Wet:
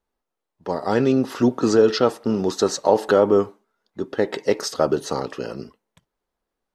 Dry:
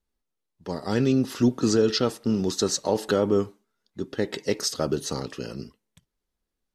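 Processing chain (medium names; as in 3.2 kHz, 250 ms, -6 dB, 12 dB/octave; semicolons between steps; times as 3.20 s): peaking EQ 800 Hz +13 dB 2.8 oct; trim -3 dB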